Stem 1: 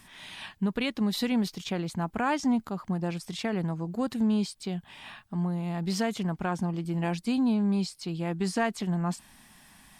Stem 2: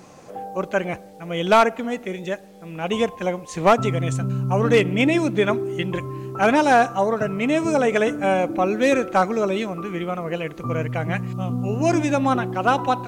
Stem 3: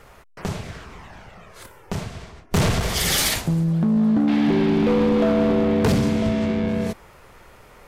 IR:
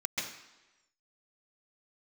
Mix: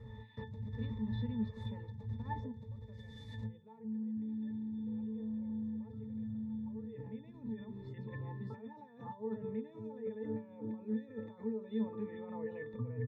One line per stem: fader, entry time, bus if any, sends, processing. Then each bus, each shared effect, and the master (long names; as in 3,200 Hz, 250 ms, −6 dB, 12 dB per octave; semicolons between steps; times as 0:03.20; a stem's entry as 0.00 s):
−7.0 dB, 0.00 s, bus A, no send, no processing
−4.0 dB, 2.15 s, no bus, no send, no processing
−2.5 dB, 0.00 s, bus A, no send, bass and treble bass +14 dB, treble +12 dB; downward compressor, threshold −11 dBFS, peak gain reduction 8 dB
bus A: 0.0 dB, downward compressor, threshold −18 dBFS, peak gain reduction 7 dB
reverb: not used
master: high-shelf EQ 7,100 Hz −8.5 dB; compressor whose output falls as the input rises −32 dBFS, ratio −1; resonances in every octave A, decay 0.21 s